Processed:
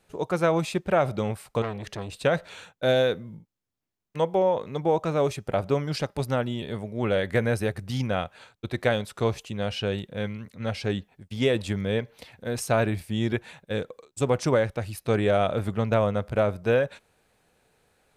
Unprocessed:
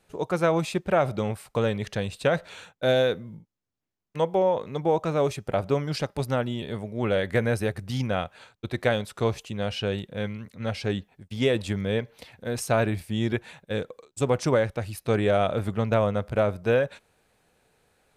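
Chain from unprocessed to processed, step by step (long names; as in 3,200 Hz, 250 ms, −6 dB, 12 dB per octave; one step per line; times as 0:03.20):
0:01.62–0:02.10: saturating transformer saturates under 1,100 Hz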